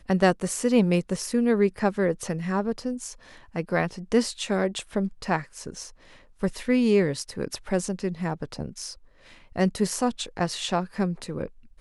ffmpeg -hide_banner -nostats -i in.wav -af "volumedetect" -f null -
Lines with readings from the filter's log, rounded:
mean_volume: -26.4 dB
max_volume: -6.0 dB